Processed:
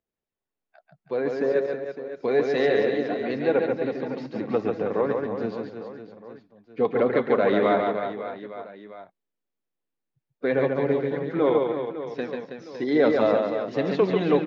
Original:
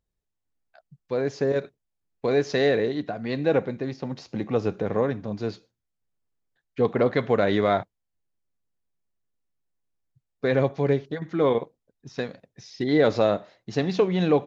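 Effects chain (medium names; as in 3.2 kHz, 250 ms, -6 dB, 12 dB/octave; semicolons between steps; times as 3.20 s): coarse spectral quantiser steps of 15 dB; three-band isolator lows -16 dB, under 170 Hz, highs -14 dB, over 3.6 kHz; reverse bouncing-ball echo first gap 140 ms, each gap 1.3×, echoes 5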